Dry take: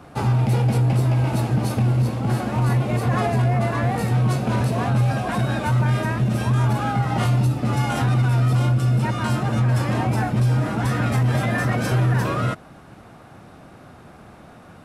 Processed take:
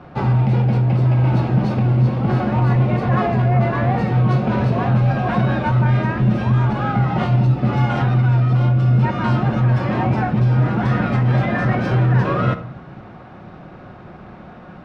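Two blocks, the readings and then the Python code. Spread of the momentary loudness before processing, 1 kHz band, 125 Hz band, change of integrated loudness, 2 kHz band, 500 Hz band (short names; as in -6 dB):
3 LU, +3.0 dB, +3.5 dB, +3.5 dB, +2.0 dB, +3.5 dB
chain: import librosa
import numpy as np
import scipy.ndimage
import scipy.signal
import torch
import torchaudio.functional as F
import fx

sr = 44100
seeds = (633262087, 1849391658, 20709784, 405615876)

y = fx.rider(x, sr, range_db=10, speed_s=0.5)
y = fx.air_absorb(y, sr, metres=240.0)
y = fx.room_shoebox(y, sr, seeds[0], volume_m3=1900.0, walls='furnished', distance_m=0.99)
y = F.gain(torch.from_numpy(y), 3.0).numpy()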